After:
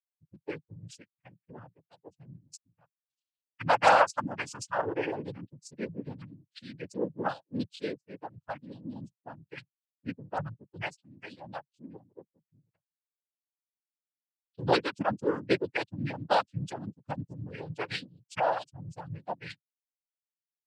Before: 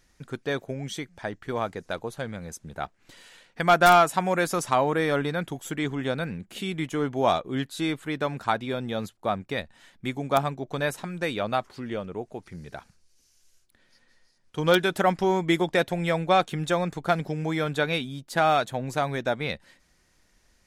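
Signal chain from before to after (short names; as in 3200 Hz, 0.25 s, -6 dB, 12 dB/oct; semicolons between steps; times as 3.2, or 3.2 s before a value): per-bin expansion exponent 3; noise vocoder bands 8; 7.76–8.49 three-band expander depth 40%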